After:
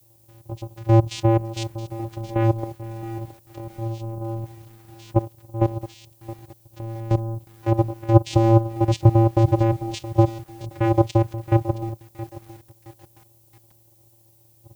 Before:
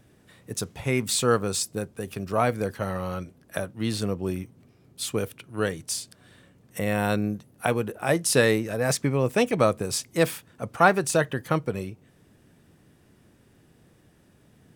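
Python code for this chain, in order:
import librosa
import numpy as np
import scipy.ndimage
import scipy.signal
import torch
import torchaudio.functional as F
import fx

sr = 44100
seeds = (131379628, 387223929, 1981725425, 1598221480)

y = fx.graphic_eq_31(x, sr, hz=(160, 1000, 1600, 5000), db=(-10, -6, -12, 7))
y = fx.cheby_harmonics(y, sr, harmonics=(5, 6, 8), levels_db=(-8, -12, -17), full_scale_db=-3.0)
y = fx.level_steps(y, sr, step_db=16)
y = fx.peak_eq(y, sr, hz=330.0, db=11.5, octaves=0.66)
y = fx.vocoder(y, sr, bands=4, carrier='square', carrier_hz=113.0)
y = fx.dmg_noise_colour(y, sr, seeds[0], colour='violet', level_db=-56.0)
y = fx.echo_crushed(y, sr, ms=670, feedback_pct=35, bits=6, wet_db=-15)
y = y * librosa.db_to_amplitude(-2.5)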